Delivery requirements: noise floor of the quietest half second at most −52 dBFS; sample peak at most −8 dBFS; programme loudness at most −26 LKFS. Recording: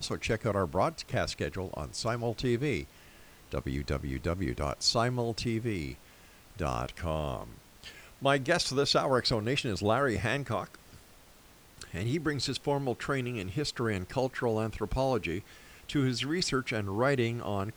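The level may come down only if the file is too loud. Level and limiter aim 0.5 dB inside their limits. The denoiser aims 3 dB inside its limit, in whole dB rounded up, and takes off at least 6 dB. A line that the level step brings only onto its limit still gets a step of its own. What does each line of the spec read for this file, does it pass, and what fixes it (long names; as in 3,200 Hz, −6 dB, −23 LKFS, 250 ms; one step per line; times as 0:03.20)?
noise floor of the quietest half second −57 dBFS: in spec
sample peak −11.5 dBFS: in spec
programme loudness −31.0 LKFS: in spec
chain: no processing needed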